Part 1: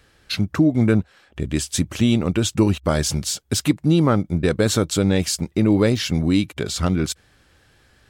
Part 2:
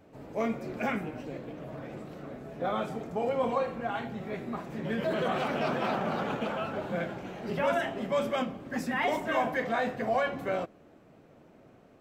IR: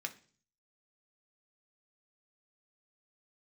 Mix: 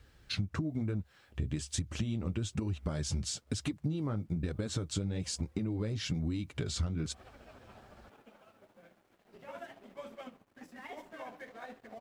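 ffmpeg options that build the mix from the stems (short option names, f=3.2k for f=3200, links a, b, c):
-filter_complex "[0:a]acompressor=threshold=-21dB:ratio=10,lowpass=f=9k:w=0.5412,lowpass=f=9k:w=1.3066,equalizer=f=67:w=0.45:g=10.5,volume=-5.5dB,asplit=2[a][b];[1:a]equalizer=f=150:t=o:w=0.31:g=-9,tremolo=f=14:d=0.43,aeval=exprs='sgn(val(0))*max(abs(val(0))-0.00562,0)':c=same,adelay=1850,volume=-10.5dB,afade=t=in:st=8.95:d=0.79:silence=0.375837[c];[b]apad=whole_len=610953[d];[c][d]sidechaincompress=threshold=-38dB:ratio=8:attack=5.1:release=124[e];[a][e]amix=inputs=2:normalize=0,acrusher=bits=11:mix=0:aa=0.000001,flanger=delay=2.1:depth=8.3:regen=-47:speed=1.1:shape=triangular,acompressor=threshold=-31dB:ratio=3"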